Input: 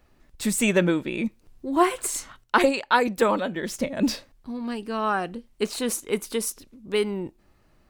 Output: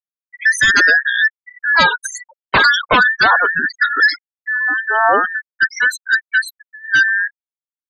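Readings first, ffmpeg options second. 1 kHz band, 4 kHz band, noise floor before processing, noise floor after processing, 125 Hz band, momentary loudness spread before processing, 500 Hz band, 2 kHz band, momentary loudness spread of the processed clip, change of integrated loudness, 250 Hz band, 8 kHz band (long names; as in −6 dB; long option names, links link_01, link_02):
+9.0 dB, +12.5 dB, −61 dBFS, below −85 dBFS, −1.5 dB, 13 LU, −0.5 dB, +20.5 dB, 12 LU, +11.5 dB, −7.0 dB, +1.5 dB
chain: -filter_complex "[0:a]afftfilt=real='real(if(between(b,1,1012),(2*floor((b-1)/92)+1)*92-b,b),0)':imag='imag(if(between(b,1,1012),(2*floor((b-1)/92)+1)*92-b,b),0)*if(between(b,1,1012),-1,1)':win_size=2048:overlap=0.75,equalizer=frequency=11000:width_type=o:width=1.4:gain=-10,acrossover=split=240|650|3800[link_01][link_02][link_03][link_04];[link_01]acompressor=threshold=-51dB:ratio=12[link_05];[link_05][link_02][link_03][link_04]amix=inputs=4:normalize=0,aeval=exprs='0.447*sin(PI/2*3.16*val(0)/0.447)':channel_layout=same,afftfilt=real='re*gte(hypot(re,im),0.2)':imag='im*gte(hypot(re,im),0.2)':win_size=1024:overlap=0.75"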